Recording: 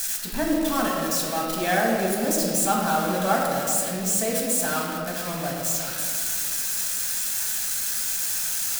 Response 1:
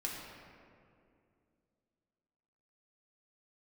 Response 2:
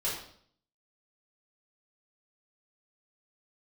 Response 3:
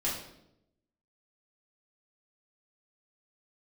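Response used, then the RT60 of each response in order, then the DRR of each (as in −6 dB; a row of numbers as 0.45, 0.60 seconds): 1; 2.4, 0.60, 0.80 seconds; −3.5, −8.5, −7.5 decibels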